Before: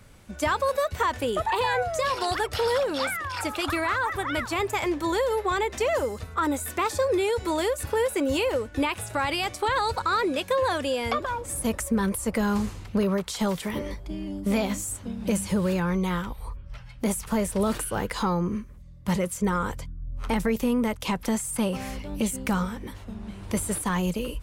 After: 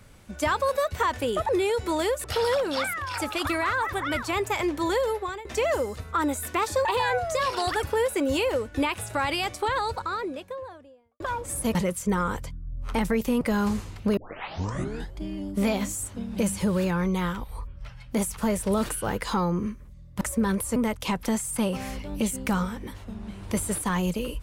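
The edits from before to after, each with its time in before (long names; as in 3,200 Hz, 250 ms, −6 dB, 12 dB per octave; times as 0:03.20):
0:01.49–0:02.47: swap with 0:07.08–0:07.83
0:05.27–0:05.68: fade out, to −19.5 dB
0:09.34–0:11.20: fade out and dull
0:11.75–0:12.30: swap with 0:19.10–0:20.76
0:13.06: tape start 1.02 s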